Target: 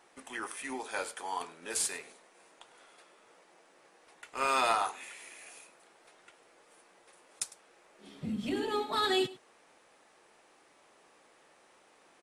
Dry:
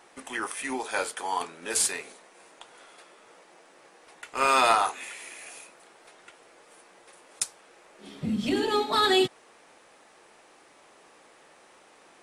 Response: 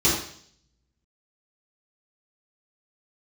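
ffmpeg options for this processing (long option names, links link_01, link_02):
-filter_complex "[0:a]asettb=1/sr,asplit=3[link_01][link_02][link_03];[link_01]atrim=end=8.324[link_04];[link_02]atrim=start=8.32:end=8.97,asetpts=PTS-STARTPTS,afade=type=in:duration=0.004:curve=qsin,afade=type=out:start_time=0.646:duration=0.004:curve=qsin,equalizer=frequency=5000:width=1.3:gain=-4.5[link_05];[link_03]atrim=start=8.966[link_06];[link_04][link_05]acrossfade=duration=0.004:curve1=hsin:curve2=qsin[link_07];[link_07][link_06]acrossfade=duration=0.004:curve1=qsin:curve2=hsin,asplit=2[link_08][link_09];[link_09]aecho=0:1:103:0.112[link_10];[link_08][link_10]amix=inputs=2:normalize=0,volume=-7dB"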